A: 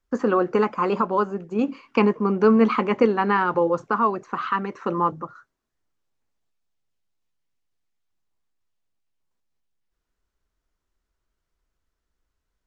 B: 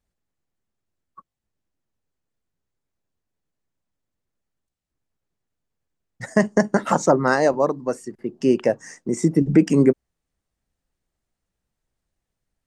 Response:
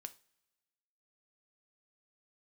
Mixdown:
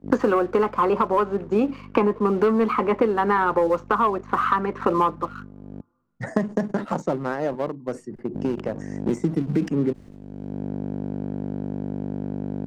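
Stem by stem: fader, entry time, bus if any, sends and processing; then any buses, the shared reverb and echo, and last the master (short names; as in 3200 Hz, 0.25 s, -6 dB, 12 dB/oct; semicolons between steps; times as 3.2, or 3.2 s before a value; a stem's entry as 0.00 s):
0.0 dB, 0.00 s, muted 5.81–8.34, send -6.5 dB, hum 50 Hz, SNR 12 dB; HPF 370 Hz 6 dB/oct; gate -47 dBFS, range -38 dB
8.8 s -20.5 dB -> 9.11 s -9.5 dB, 0.00 s, no send, low shelf 170 Hz +8 dB; sustainer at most 140 dB/s; auto duck -11 dB, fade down 1.70 s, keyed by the first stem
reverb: on, pre-delay 3 ms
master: LPF 1200 Hz 6 dB/oct; sample leveller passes 1; three-band squash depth 100%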